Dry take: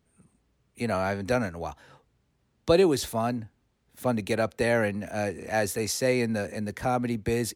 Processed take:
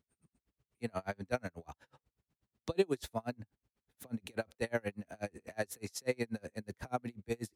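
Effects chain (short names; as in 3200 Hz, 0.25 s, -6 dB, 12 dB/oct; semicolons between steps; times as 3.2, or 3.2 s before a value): dB-linear tremolo 8.2 Hz, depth 36 dB; gain -5.5 dB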